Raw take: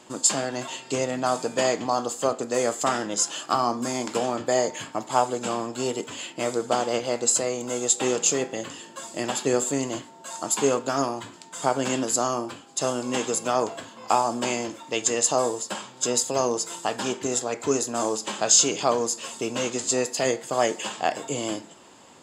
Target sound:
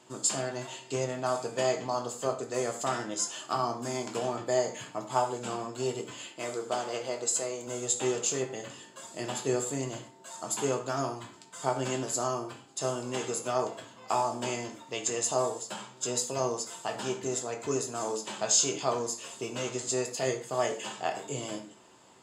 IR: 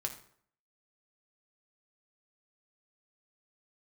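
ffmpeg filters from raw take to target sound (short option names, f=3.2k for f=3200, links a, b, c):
-filter_complex "[0:a]asettb=1/sr,asplit=3[a][b][c];[a]atrim=end=6.294[d];[b]atrim=start=6.29:end=7.67,asetpts=PTS-STARTPTS,afade=t=in:d=0.004:c=qsin,afade=t=out:st=1.376:d=0.004:c=qsin,highpass=f=280:p=1[e];[c]atrim=start=7.666[f];[d][e]acrossfade=d=0.004:c1=hsin:c2=qsin[g];[g][f]acrossfade=d=0.004:c1=qsin:c2=hsin[h];[1:a]atrim=start_sample=2205,afade=t=out:st=0.18:d=0.01,atrim=end_sample=8379[i];[h][i]afir=irnorm=-1:irlink=0,volume=-7.5dB"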